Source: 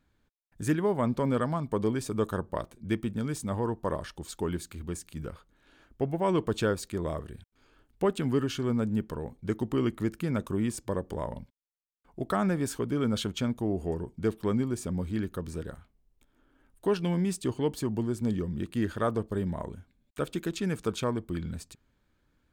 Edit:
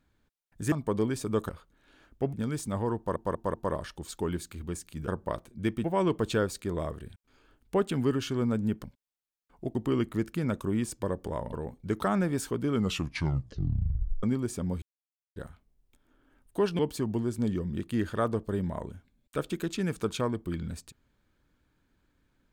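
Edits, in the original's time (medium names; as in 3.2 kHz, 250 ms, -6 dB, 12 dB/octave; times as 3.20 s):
0.72–1.57 s: delete
2.34–3.10 s: swap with 5.28–6.12 s
3.74 s: stutter 0.19 s, 4 plays
9.12–9.61 s: swap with 11.39–12.30 s
12.99 s: tape stop 1.52 s
15.10–15.64 s: mute
17.07–17.62 s: delete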